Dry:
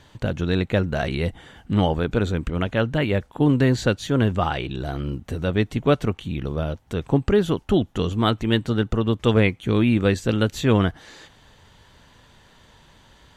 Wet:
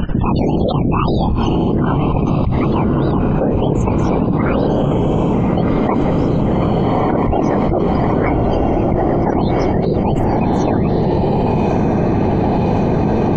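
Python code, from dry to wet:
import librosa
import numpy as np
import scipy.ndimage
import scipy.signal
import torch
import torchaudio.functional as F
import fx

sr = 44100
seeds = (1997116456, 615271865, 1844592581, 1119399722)

y = fx.pitch_heads(x, sr, semitones=9.0)
y = fx.riaa(y, sr, side='playback')
y = fx.hum_notches(y, sr, base_hz=60, count=10)
y = fx.level_steps(y, sr, step_db=15)
y = fx.noise_reduce_blind(y, sr, reduce_db=8)
y = fx.whisperise(y, sr, seeds[0])
y = fx.spec_topn(y, sr, count=64)
y = fx.echo_diffused(y, sr, ms=1271, feedback_pct=50, wet_db=-5.5)
y = fx.env_flatten(y, sr, amount_pct=100)
y = y * librosa.db_to_amplitude(-2.0)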